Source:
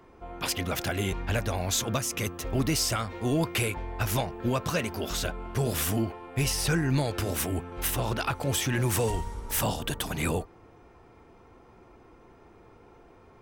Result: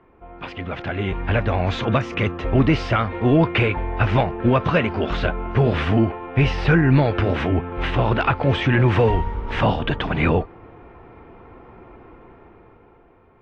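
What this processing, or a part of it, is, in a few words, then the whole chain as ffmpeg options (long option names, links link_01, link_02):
action camera in a waterproof case: -af "lowpass=frequency=2800:width=0.5412,lowpass=frequency=2800:width=1.3066,dynaudnorm=framelen=180:gausssize=13:maxgain=10.5dB" -ar 24000 -c:a aac -b:a 48k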